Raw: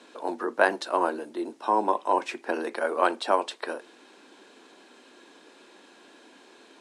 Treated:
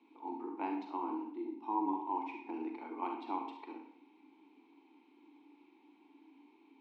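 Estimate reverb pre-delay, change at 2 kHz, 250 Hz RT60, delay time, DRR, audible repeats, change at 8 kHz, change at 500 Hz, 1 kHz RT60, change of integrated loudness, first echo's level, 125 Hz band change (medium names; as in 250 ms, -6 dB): 38 ms, -24.0 dB, 0.55 s, no echo, 2.0 dB, no echo, under -30 dB, -19.0 dB, 0.60 s, -12.5 dB, no echo, no reading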